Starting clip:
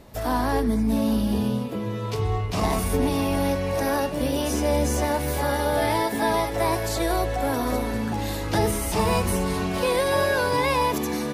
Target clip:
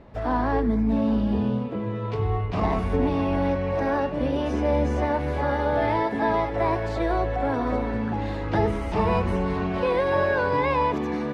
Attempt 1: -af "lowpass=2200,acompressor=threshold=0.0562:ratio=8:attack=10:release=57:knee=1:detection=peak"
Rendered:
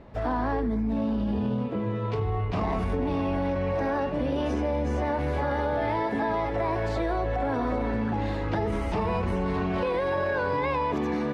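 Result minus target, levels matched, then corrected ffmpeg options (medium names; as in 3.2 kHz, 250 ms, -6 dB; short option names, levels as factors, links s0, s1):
compression: peak gain reduction +7.5 dB
-af "lowpass=2200"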